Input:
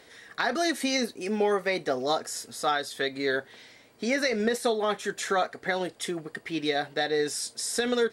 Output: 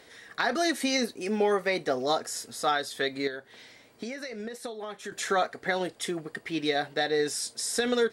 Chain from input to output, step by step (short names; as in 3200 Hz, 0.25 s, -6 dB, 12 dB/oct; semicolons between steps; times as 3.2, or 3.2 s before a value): 3.27–5.12 compressor 12:1, threshold -34 dBFS, peak gain reduction 14 dB